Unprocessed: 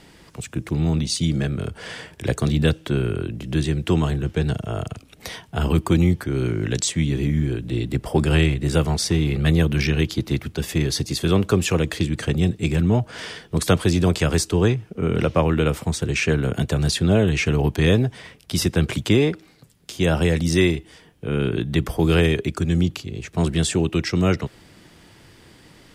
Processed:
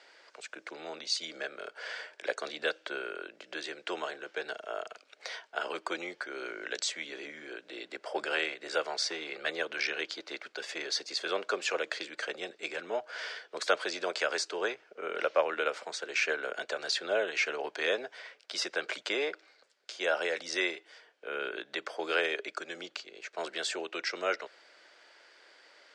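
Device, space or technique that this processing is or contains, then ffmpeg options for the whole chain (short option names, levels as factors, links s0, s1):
phone speaker on a table: -af "highpass=f=460:w=0.5412,highpass=f=460:w=1.3066,equalizer=f=590:t=q:w=4:g=6,equalizer=f=1500:t=q:w=4:g=9,equalizer=f=2200:t=q:w=4:g=4,equalizer=f=4500:t=q:w=4:g=5,lowpass=f=7000:w=0.5412,lowpass=f=7000:w=1.3066,volume=0.355"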